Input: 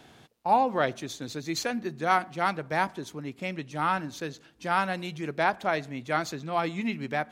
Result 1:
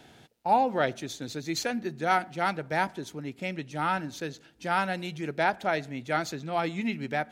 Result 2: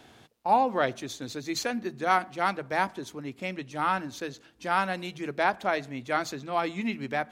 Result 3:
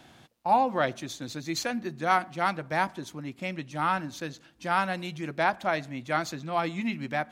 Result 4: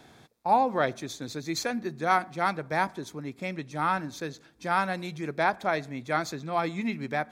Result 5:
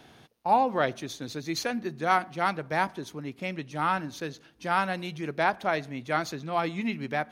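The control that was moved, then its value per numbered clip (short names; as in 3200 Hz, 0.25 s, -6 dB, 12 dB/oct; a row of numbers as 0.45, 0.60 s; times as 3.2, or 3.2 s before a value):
notch, frequency: 1100, 160, 430, 2900, 7500 Hz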